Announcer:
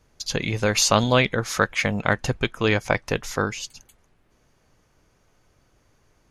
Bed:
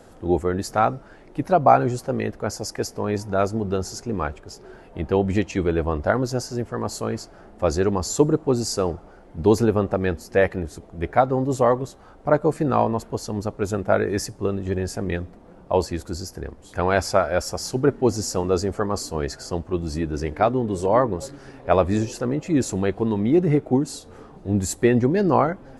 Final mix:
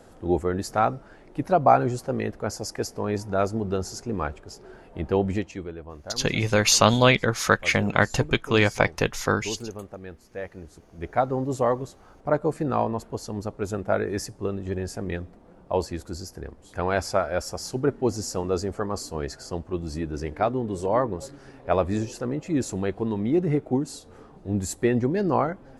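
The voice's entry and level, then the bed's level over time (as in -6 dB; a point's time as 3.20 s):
5.90 s, +1.0 dB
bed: 5.26 s -2.5 dB
5.79 s -17 dB
10.37 s -17 dB
11.24 s -4.5 dB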